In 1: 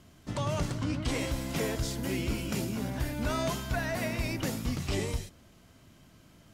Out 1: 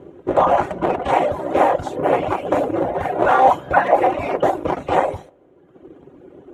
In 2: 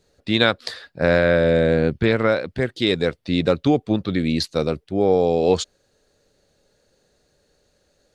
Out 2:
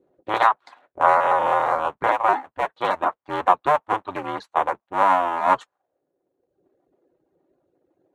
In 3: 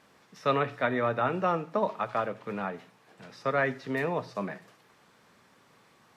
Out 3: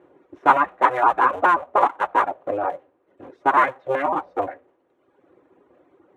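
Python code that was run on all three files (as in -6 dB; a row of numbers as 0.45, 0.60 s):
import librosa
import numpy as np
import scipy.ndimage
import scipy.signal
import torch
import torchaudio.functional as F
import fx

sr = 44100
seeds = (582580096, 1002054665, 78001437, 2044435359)

y = fx.cycle_switch(x, sr, every=2, mode='inverted')
y = fx.dereverb_blind(y, sr, rt60_s=1.2)
y = fx.peak_eq(y, sr, hz=4900.0, db=-14.0, octaves=0.45)
y = fx.auto_wah(y, sr, base_hz=370.0, top_hz=1000.0, q=2.4, full_db=-26.0, direction='up')
y = fx.notch_comb(y, sr, f0_hz=220.0)
y = y * 10.0 ** (-1.5 / 20.0) / np.max(np.abs(y))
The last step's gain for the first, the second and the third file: +27.0, +8.5, +18.0 dB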